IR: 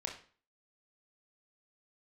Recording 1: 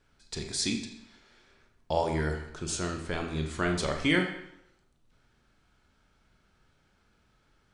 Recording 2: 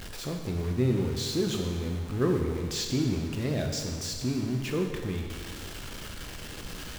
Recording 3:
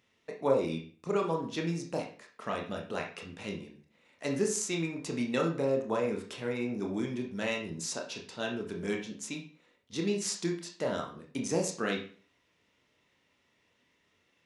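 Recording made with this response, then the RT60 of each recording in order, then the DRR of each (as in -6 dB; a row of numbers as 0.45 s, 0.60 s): 3; 0.75 s, 1.7 s, 0.40 s; 3.0 dB, 2.0 dB, 0.5 dB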